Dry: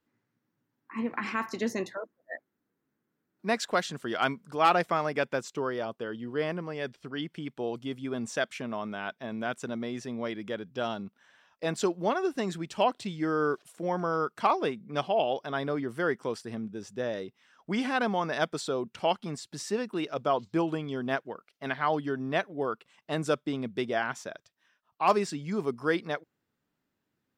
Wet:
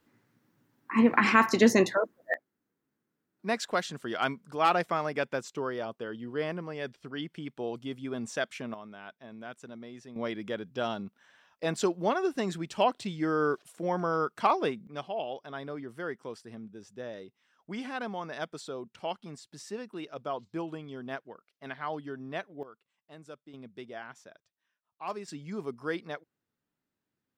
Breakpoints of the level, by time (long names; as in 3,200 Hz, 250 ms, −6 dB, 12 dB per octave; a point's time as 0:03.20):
+10 dB
from 0:02.34 −2 dB
from 0:08.74 −10.5 dB
from 0:10.16 0 dB
from 0:14.87 −8 dB
from 0:22.63 −19.5 dB
from 0:23.54 −13 dB
from 0:25.28 −6 dB